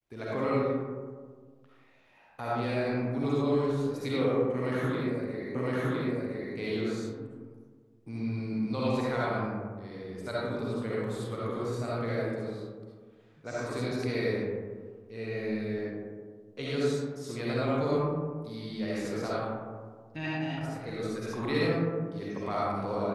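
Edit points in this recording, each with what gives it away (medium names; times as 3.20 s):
5.55 s: repeat of the last 1.01 s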